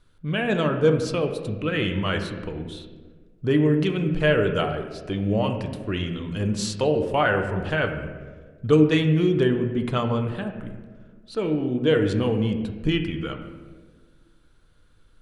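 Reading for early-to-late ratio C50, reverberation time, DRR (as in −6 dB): 7.5 dB, 1.5 s, 4.5 dB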